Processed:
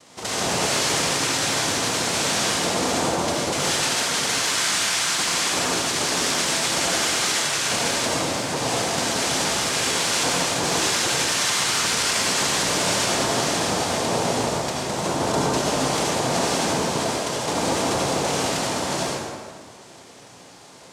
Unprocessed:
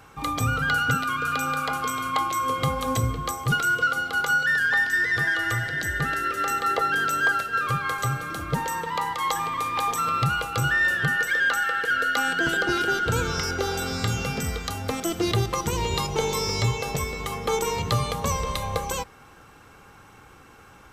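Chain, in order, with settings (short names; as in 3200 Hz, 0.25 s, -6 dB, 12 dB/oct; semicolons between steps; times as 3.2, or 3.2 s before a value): noise vocoder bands 2; limiter -17 dBFS, peak gain reduction 9.5 dB; reverb RT60 1.8 s, pre-delay 63 ms, DRR -4 dB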